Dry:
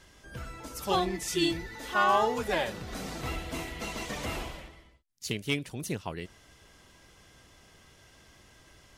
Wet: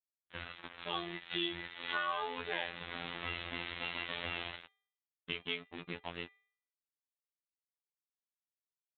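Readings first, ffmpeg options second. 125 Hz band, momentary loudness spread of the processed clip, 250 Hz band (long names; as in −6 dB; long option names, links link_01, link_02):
−13.5 dB, 10 LU, −12.5 dB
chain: -filter_complex "[0:a]aresample=8000,acrusher=bits=5:mix=0:aa=0.5,aresample=44100,aemphasis=mode=reproduction:type=50fm,asplit=2[link_01][link_02];[link_02]adelay=14,volume=-13.5dB[link_03];[link_01][link_03]amix=inputs=2:normalize=0,acompressor=threshold=-38dB:ratio=2.5,anlmdn=0.00001,highpass=frequency=67:poles=1,bandreject=frequency=399.6:width_type=h:width=4,bandreject=frequency=799.2:width_type=h:width=4,bandreject=frequency=1198.8:width_type=h:width=4,bandreject=frequency=1598.4:width_type=h:width=4,bandreject=frequency=1998:width_type=h:width=4,bandreject=frequency=2397.6:width_type=h:width=4,bandreject=frequency=2797.2:width_type=h:width=4,bandreject=frequency=3196.8:width_type=h:width=4,bandreject=frequency=3596.4:width_type=h:width=4,bandreject=frequency=3996:width_type=h:width=4,bandreject=frequency=4395.6:width_type=h:width=4,bandreject=frequency=4795.2:width_type=h:width=4,afftfilt=real='hypot(re,im)*cos(PI*b)':imag='0':win_size=2048:overlap=0.75,tiltshelf=frequency=1500:gain=-8.5,volume=5.5dB"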